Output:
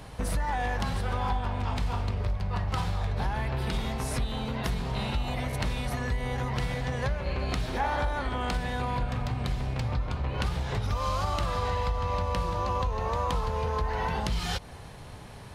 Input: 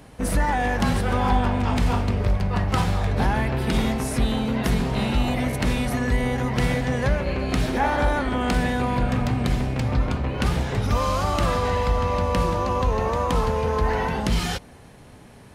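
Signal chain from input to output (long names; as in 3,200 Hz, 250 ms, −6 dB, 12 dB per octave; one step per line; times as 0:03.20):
low-shelf EQ 240 Hz +5.5 dB
downward compressor, threshold −26 dBFS, peak gain reduction 14 dB
octave-band graphic EQ 250/1,000/4,000 Hz −7/+4/+5 dB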